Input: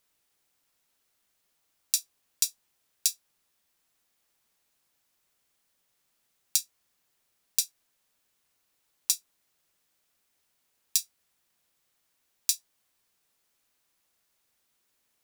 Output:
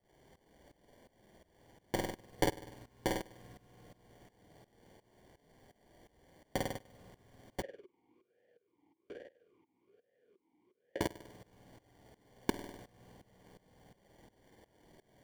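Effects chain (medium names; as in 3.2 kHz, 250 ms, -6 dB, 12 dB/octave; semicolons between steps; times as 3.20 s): peaking EQ 610 Hz +11.5 dB 2.7 oct; reverberation RT60 5.4 s, pre-delay 37 ms, DRR 18.5 dB; compression 16:1, threshold -33 dBFS, peak gain reduction 15 dB; flange 0.2 Hz, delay 5.2 ms, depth 5.1 ms, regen +72%; sample-and-hold 34×; wavefolder -31 dBFS; flutter echo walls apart 8.5 m, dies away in 0.69 s; tremolo saw up 2.8 Hz, depth 90%; 7.62–11.01 s: talking filter e-u 1.2 Hz; trim +15.5 dB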